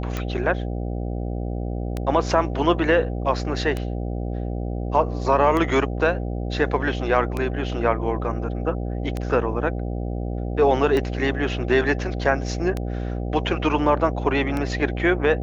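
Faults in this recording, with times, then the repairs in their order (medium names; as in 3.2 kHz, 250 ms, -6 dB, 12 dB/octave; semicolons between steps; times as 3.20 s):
buzz 60 Hz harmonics 13 -27 dBFS
tick 33 1/3 rpm -13 dBFS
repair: de-click; de-hum 60 Hz, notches 13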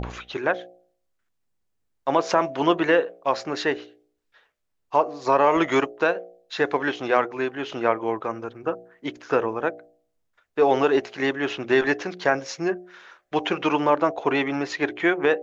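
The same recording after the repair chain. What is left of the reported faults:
nothing left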